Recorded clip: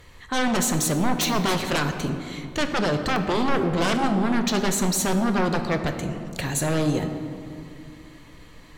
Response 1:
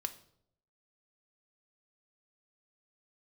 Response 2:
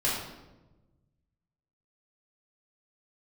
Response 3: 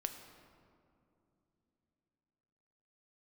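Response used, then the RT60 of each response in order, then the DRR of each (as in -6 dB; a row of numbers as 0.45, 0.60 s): 3; 0.70 s, 1.1 s, not exponential; 7.5, -7.5, 6.0 dB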